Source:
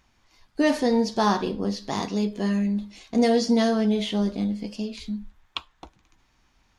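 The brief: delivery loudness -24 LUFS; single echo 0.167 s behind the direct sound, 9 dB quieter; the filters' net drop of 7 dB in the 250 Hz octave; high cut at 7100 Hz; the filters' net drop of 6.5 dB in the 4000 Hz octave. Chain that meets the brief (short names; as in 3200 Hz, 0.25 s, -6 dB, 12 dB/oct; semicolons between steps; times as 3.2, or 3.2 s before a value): LPF 7100 Hz; bell 250 Hz -8.5 dB; bell 4000 Hz -8 dB; echo 0.167 s -9 dB; gain +4 dB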